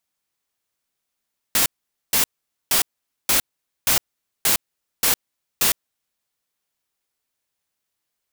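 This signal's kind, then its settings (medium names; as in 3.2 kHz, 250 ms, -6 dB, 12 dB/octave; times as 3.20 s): noise bursts white, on 0.11 s, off 0.47 s, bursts 8, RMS -17.5 dBFS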